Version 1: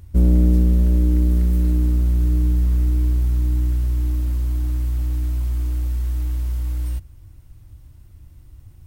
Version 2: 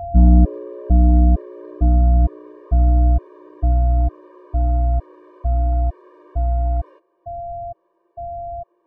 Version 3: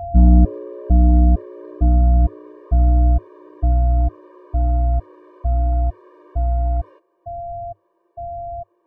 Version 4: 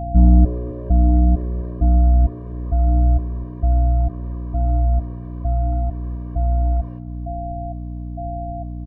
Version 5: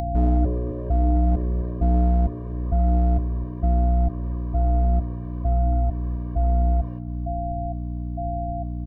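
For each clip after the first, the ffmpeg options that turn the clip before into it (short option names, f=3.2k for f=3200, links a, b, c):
-af "aeval=exprs='val(0)+0.02*sin(2*PI*690*n/s)':c=same,lowpass=f=960:t=q:w=1.6,afftfilt=real='re*gt(sin(2*PI*1.1*pts/sr)*(1-2*mod(floor(b*sr/1024/310),2)),0)':imag='im*gt(sin(2*PI*1.1*pts/sr)*(1-2*mod(floor(b*sr/1024/310),2)),0)':win_size=1024:overlap=0.75,volume=4dB"
-af "equalizer=f=100:t=o:w=0.25:g=3.5"
-af "aeval=exprs='val(0)+0.0501*(sin(2*PI*60*n/s)+sin(2*PI*2*60*n/s)/2+sin(2*PI*3*60*n/s)/3+sin(2*PI*4*60*n/s)/4+sin(2*PI*5*60*n/s)/5)':c=same,aecho=1:1:260|520|780|1040|1300:0.141|0.0735|0.0382|0.0199|0.0103,volume=-1dB"
-filter_complex "[0:a]acrossover=split=290[a][b];[a]asoftclip=type=hard:threshold=-17dB[c];[c][b]amix=inputs=2:normalize=0,acompressor=mode=upward:threshold=-33dB:ratio=2.5"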